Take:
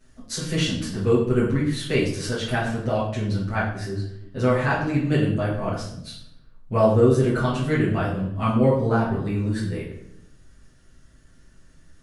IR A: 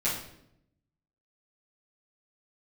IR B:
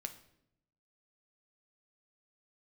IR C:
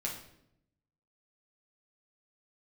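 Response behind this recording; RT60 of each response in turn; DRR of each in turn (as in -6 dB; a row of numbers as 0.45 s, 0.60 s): A; 0.75 s, 0.75 s, 0.75 s; -11.0 dB, 6.5 dB, -3.0 dB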